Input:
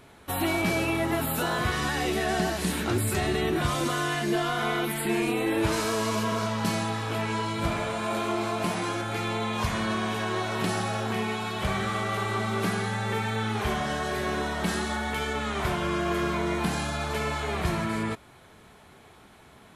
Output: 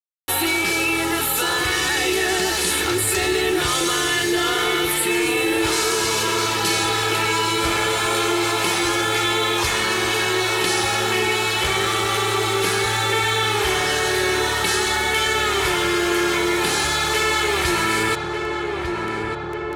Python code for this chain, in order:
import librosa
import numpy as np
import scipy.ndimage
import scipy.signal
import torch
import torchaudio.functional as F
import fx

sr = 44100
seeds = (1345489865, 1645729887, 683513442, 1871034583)

y = fx.tilt_shelf(x, sr, db=-8.5, hz=1100.0)
y = fx.rider(y, sr, range_db=10, speed_s=0.5)
y = fx.peak_eq(y, sr, hz=370.0, db=7.5, octaves=0.67)
y = fx.quant_dither(y, sr, seeds[0], bits=6, dither='none')
y = scipy.signal.sosfilt(scipy.signal.butter(2, 12000.0, 'lowpass', fs=sr, output='sos'), y)
y = y + 0.56 * np.pad(y, (int(2.3 * sr / 1000.0), 0))[:len(y)]
y = fx.echo_filtered(y, sr, ms=1197, feedback_pct=69, hz=1500.0, wet_db=-9.0)
y = fx.env_flatten(y, sr, amount_pct=50)
y = F.gain(torch.from_numpy(y), 3.5).numpy()